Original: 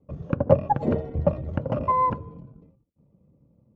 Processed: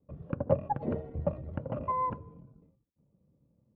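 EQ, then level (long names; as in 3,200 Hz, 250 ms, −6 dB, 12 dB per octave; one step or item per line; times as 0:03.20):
low-pass filter 2,800 Hz 12 dB per octave
−9.0 dB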